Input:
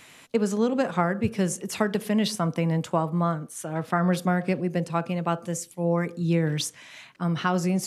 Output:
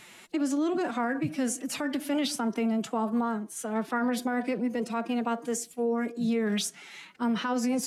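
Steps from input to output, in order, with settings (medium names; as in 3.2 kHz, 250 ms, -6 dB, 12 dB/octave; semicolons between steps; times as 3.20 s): formant-preserving pitch shift +5.5 st; peak limiter -20.5 dBFS, peak gain reduction 10.5 dB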